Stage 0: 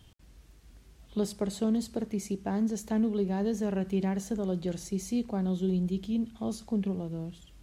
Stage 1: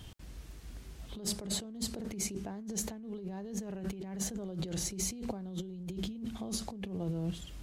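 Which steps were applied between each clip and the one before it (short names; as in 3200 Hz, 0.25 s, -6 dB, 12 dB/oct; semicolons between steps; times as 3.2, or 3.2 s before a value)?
negative-ratio compressor -39 dBFS, ratio -1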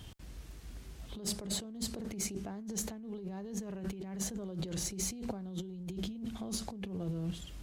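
one diode to ground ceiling -25.5 dBFS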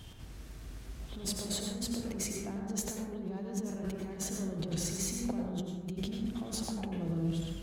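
plate-style reverb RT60 1.3 s, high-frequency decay 0.3×, pre-delay 80 ms, DRR 0 dB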